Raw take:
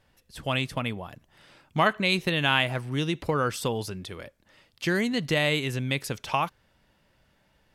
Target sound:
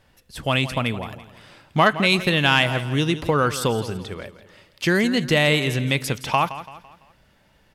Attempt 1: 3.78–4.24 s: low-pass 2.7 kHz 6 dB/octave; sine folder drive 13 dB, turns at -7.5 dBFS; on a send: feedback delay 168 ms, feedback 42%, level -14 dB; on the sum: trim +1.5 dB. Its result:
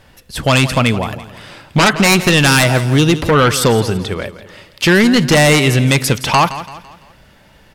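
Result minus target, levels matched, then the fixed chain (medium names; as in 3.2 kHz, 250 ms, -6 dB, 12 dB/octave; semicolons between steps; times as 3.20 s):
sine folder: distortion +20 dB
3.78–4.24 s: low-pass 2.7 kHz 6 dB/octave; sine folder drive 1 dB, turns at -7.5 dBFS; on a send: feedback delay 168 ms, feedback 42%, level -14 dB; on the sum: trim +1.5 dB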